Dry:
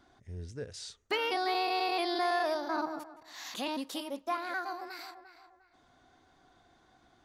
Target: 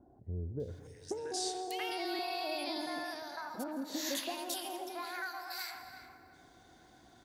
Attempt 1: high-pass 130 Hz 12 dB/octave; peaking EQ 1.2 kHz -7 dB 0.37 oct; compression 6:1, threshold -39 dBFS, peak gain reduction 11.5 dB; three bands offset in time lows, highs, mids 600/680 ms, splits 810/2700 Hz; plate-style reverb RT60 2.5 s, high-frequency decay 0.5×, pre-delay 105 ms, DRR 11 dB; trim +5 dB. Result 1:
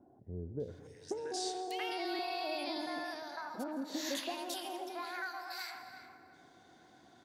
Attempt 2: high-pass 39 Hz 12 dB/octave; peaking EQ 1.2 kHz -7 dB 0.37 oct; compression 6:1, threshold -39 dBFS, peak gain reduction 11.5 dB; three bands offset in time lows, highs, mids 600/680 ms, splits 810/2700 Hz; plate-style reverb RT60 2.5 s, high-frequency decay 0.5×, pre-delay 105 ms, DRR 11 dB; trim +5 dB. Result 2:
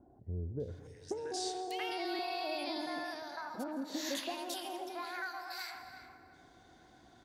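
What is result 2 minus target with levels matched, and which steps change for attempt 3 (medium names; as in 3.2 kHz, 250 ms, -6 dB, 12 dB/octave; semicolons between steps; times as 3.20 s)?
8 kHz band -3.0 dB
add after compression: treble shelf 8.6 kHz +10 dB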